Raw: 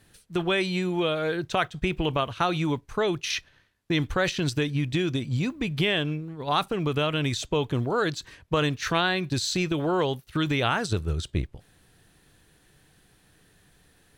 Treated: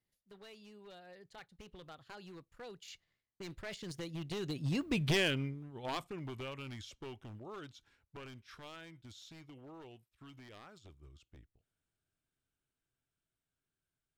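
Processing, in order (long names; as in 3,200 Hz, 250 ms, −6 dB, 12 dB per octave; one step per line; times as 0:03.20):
wavefolder on the positive side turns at −20 dBFS
source passing by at 0:05.03, 44 m/s, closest 12 metres
level −3.5 dB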